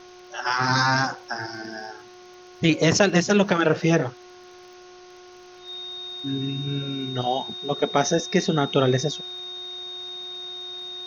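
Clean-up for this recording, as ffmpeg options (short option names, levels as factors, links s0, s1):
-af "adeclick=t=4,bandreject=f=361.5:t=h:w=4,bandreject=f=723:t=h:w=4,bandreject=f=1084.5:t=h:w=4,bandreject=f=1446:t=h:w=4,bandreject=f=3700:w=30,afwtdn=0.004"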